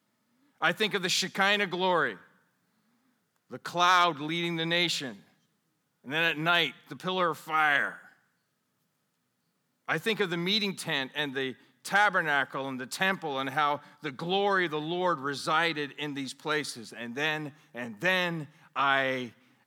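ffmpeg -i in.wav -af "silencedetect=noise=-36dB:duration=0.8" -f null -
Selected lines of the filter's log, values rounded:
silence_start: 2.13
silence_end: 3.53 | silence_duration: 1.39
silence_start: 5.11
silence_end: 6.08 | silence_duration: 0.97
silence_start: 7.95
silence_end: 9.89 | silence_duration: 1.94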